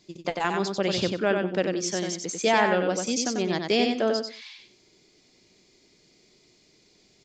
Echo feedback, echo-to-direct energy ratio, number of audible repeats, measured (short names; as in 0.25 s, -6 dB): 22%, -4.5 dB, 3